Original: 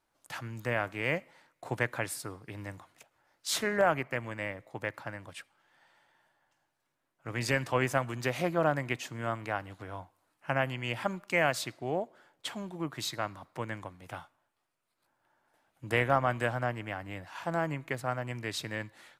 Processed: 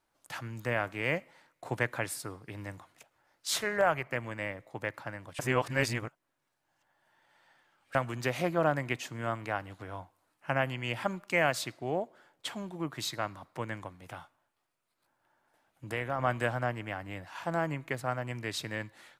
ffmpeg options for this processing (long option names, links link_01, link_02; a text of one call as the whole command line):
ffmpeg -i in.wav -filter_complex "[0:a]asettb=1/sr,asplit=3[link_01][link_02][link_03];[link_01]atrim=end=3.574[link_04];[link_02]atrim=start=3.57:end=4.07,asetpts=PTS-STARTPTS,afade=type=in:duration=0.004:curve=qsin,afade=type=out:start_time=0.496:duration=0.004:curve=qsin,equalizer=frequency=260:width_type=o:width=0.77:gain=-9.5[link_05];[link_03]atrim=start=4.066[link_06];[link_04][link_05]acrossfade=duration=0.004:curve1=hsin:curve2=qsin[link_07];[link_07][link_06]acrossfade=duration=0.004:curve1=qsin:curve2=hsin,asplit=3[link_08][link_09][link_10];[link_08]afade=type=out:start_time=14.03:duration=0.02[link_11];[link_09]acompressor=threshold=-41dB:ratio=1.5:attack=3.2:release=140:knee=1:detection=peak,afade=type=in:start_time=14.03:duration=0.02,afade=type=out:start_time=16.18:duration=0.02[link_12];[link_10]afade=type=in:start_time=16.18:duration=0.02[link_13];[link_11][link_12][link_13]amix=inputs=3:normalize=0,asplit=3[link_14][link_15][link_16];[link_14]atrim=end=5.392[link_17];[link_15]atrim=start=5.388:end=7.952,asetpts=PTS-STARTPTS,areverse[link_18];[link_16]atrim=start=7.948[link_19];[link_17][link_18]acrossfade=duration=0.004:curve1=hsin:curve2=hsin[link_20];[link_20][link_19]acrossfade=duration=0.004:curve1=hsin:curve2=hsin" out.wav